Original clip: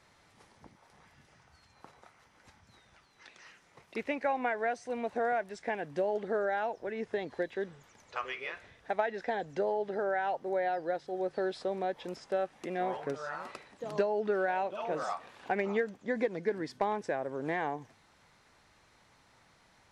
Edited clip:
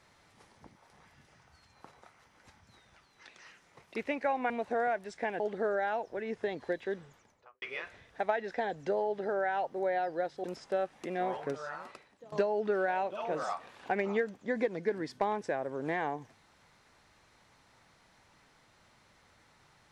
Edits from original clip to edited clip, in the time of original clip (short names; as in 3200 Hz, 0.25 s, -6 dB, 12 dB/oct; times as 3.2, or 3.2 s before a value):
4.5–4.95 cut
5.85–6.1 cut
7.71–8.32 studio fade out
11.14–12.04 cut
13.12–13.92 fade out, to -16.5 dB